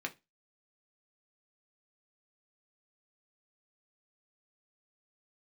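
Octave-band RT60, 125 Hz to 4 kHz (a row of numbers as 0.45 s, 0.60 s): 0.25 s, 0.25 s, 0.25 s, 0.20 s, 0.25 s, 0.20 s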